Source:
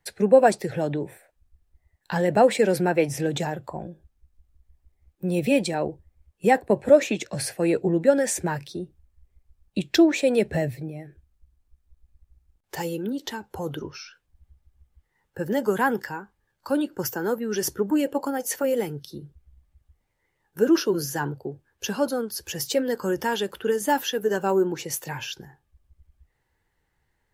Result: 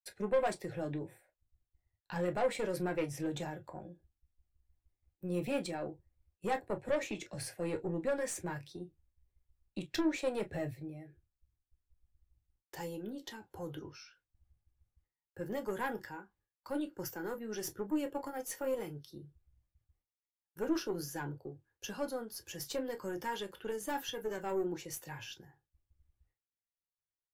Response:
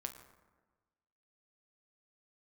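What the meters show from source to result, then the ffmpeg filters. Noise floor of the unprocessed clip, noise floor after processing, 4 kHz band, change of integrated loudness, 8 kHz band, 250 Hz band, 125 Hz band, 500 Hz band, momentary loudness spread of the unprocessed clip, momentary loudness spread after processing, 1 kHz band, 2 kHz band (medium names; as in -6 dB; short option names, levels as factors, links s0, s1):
-74 dBFS, under -85 dBFS, -13.0 dB, -14.0 dB, -13.5 dB, -14.0 dB, -12.5 dB, -14.5 dB, 17 LU, 15 LU, -14.0 dB, -13.0 dB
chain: -filter_complex "[0:a]aeval=exprs='(tanh(6.31*val(0)+0.4)-tanh(0.4))/6.31':c=same,agate=range=0.0224:threshold=0.00126:ratio=3:detection=peak[s0];[1:a]atrim=start_sample=2205,atrim=end_sample=3528,asetrate=70560,aresample=44100[s1];[s0][s1]afir=irnorm=-1:irlink=0,volume=0.596"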